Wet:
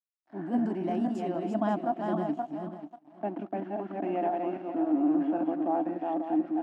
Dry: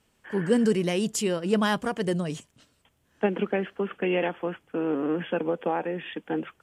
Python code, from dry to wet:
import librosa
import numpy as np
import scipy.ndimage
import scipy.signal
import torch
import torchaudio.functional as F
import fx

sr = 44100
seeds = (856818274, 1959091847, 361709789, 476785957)

y = fx.reverse_delay_fb(x, sr, ms=269, feedback_pct=51, wet_db=-3)
y = fx.transient(y, sr, attack_db=-5, sustain_db=-1)
y = np.sign(y) * np.maximum(np.abs(y) - 10.0 ** (-42.5 / 20.0), 0.0)
y = fx.double_bandpass(y, sr, hz=460.0, octaves=1.2)
y = y + 10.0 ** (-24.0 / 20.0) * np.pad(y, (int(190 * sr / 1000.0), 0))[:len(y)]
y = y * 10.0 ** (7.5 / 20.0)